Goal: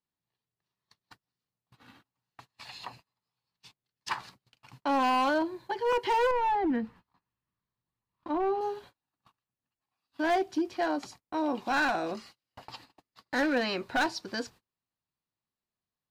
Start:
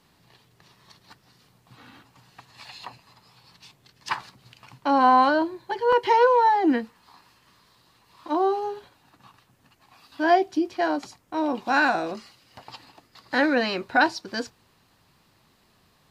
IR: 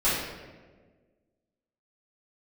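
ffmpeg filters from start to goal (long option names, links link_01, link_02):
-filter_complex "[0:a]asoftclip=type=hard:threshold=-17.5dB,asettb=1/sr,asplit=3[link_01][link_02][link_03];[link_01]atrim=end=6.314[link_04];[link_02]atrim=start=6.31:end=8.61,asetpts=PTS-STARTPTS,afade=type=in:duration=0.004:curve=qsin,afade=type=out:start_time=2.296:duration=0.004:curve=qsin,bass=frequency=250:gain=10,treble=frequency=4000:gain=-13[link_05];[link_03]atrim=start=8.606[link_06];[link_04][link_05]acrossfade=duration=0.004:curve1=hsin:curve2=qsin[link_07];[link_07][link_06]acrossfade=duration=0.004:curve1=qsin:curve2=hsin,alimiter=limit=-20dB:level=0:latency=1:release=119,agate=range=-30dB:threshold=-48dB:ratio=16:detection=peak,volume=-2.5dB"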